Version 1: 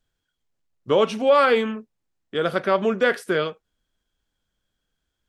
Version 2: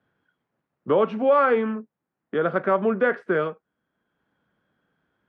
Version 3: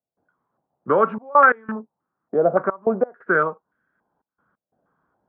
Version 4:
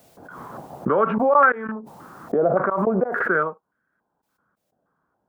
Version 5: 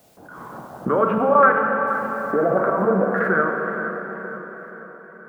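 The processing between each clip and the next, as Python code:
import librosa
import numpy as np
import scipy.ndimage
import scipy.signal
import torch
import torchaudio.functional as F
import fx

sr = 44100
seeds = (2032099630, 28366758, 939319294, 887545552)

y1 = scipy.signal.sosfilt(scipy.signal.cheby1(2, 1.0, [160.0, 1500.0], 'bandpass', fs=sr, output='sos'), x)
y1 = fx.band_squash(y1, sr, depth_pct=40)
y2 = fx.step_gate(y1, sr, bpm=89, pattern='.xxxxxx.x', floor_db=-24.0, edge_ms=4.5)
y2 = fx.filter_held_lowpass(y2, sr, hz=3.5, low_hz=690.0, high_hz=1600.0)
y3 = fx.pre_swell(y2, sr, db_per_s=38.0)
y3 = y3 * 10.0 ** (-2.5 / 20.0)
y4 = fx.echo_feedback(y3, sr, ms=474, feedback_pct=56, wet_db=-15.0)
y4 = fx.rev_plate(y4, sr, seeds[0], rt60_s=4.3, hf_ratio=0.95, predelay_ms=0, drr_db=1.0)
y4 = y4 * 10.0 ** (-1.0 / 20.0)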